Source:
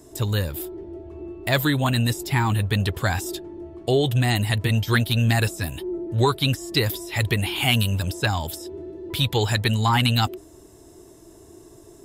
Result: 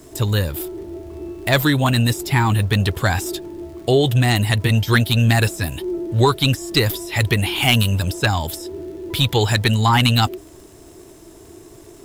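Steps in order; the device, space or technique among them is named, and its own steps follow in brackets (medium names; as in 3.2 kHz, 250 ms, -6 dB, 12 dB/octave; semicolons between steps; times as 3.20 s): record under a worn stylus (tracing distortion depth 0.023 ms; crackle; pink noise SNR 36 dB); trim +4.5 dB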